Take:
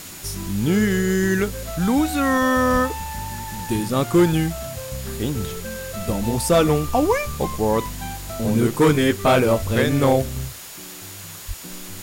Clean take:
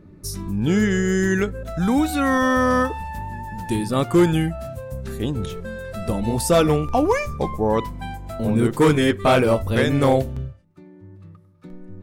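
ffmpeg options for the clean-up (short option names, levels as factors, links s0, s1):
-filter_complex "[0:a]bandreject=f=6900:w=30,asplit=3[s0][s1][s2];[s0]afade=t=out:st=2.72:d=0.02[s3];[s1]highpass=f=140:w=0.5412,highpass=f=140:w=1.3066,afade=t=in:st=2.72:d=0.02,afade=t=out:st=2.84:d=0.02[s4];[s2]afade=t=in:st=2.84:d=0.02[s5];[s3][s4][s5]amix=inputs=3:normalize=0,asplit=3[s6][s7][s8];[s6]afade=t=out:st=11.47:d=0.02[s9];[s7]highpass=f=140:w=0.5412,highpass=f=140:w=1.3066,afade=t=in:st=11.47:d=0.02,afade=t=out:st=11.59:d=0.02[s10];[s8]afade=t=in:st=11.59:d=0.02[s11];[s9][s10][s11]amix=inputs=3:normalize=0,afwtdn=0.014"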